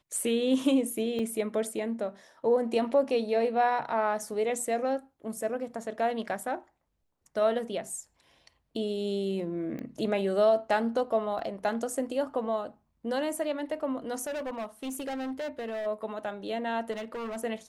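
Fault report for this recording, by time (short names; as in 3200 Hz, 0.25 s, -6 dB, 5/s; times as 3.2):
1.19 gap 3.2 ms
9.79 pop -27 dBFS
11.39 gap 2.1 ms
14.27–15.87 clipped -31.5 dBFS
16.91–17.38 clipped -33 dBFS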